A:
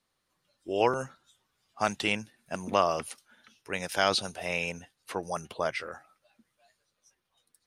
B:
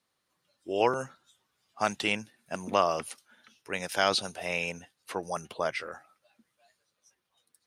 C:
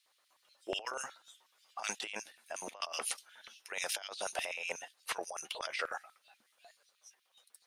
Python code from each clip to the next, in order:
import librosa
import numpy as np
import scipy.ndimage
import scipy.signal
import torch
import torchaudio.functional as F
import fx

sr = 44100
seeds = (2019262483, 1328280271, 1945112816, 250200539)

y1 = fx.highpass(x, sr, hz=110.0, slope=6)
y2 = fx.filter_lfo_highpass(y1, sr, shape='square', hz=8.2, low_hz=660.0, high_hz=2800.0, q=1.3)
y2 = fx.over_compress(y2, sr, threshold_db=-39.0, ratio=-1.0)
y2 = y2 * 10.0 ** (-1.5 / 20.0)